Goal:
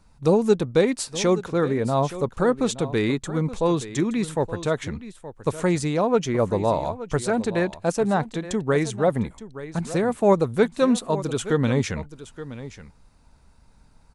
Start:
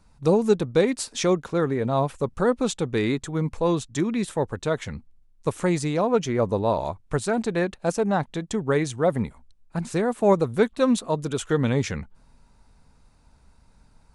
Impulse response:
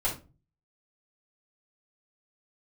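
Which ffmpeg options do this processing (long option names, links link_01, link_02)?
-af "aecho=1:1:872:0.188,volume=1dB"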